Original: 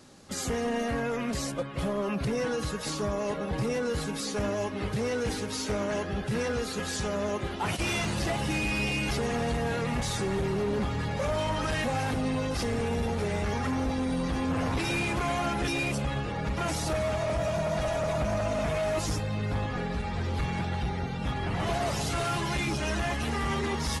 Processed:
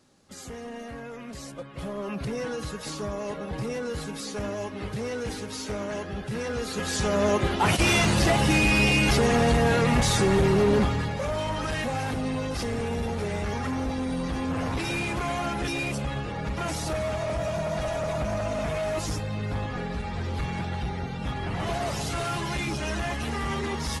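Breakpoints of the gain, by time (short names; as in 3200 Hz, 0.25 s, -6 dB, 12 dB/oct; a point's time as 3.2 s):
1.25 s -9 dB
2.17 s -2 dB
6.4 s -2 dB
7.28 s +8 dB
10.76 s +8 dB
11.18 s 0 dB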